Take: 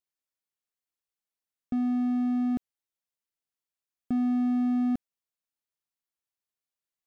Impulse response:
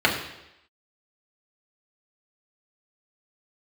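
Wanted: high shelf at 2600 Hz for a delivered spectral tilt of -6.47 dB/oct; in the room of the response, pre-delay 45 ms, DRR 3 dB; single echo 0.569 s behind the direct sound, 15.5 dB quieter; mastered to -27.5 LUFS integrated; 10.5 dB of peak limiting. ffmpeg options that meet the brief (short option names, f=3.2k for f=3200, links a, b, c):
-filter_complex "[0:a]highshelf=f=2.6k:g=3.5,alimiter=level_in=6.5dB:limit=-24dB:level=0:latency=1,volume=-6.5dB,aecho=1:1:569:0.168,asplit=2[a][b];[1:a]atrim=start_sample=2205,adelay=45[c];[b][c]afir=irnorm=-1:irlink=0,volume=-21.5dB[d];[a][d]amix=inputs=2:normalize=0,volume=10dB"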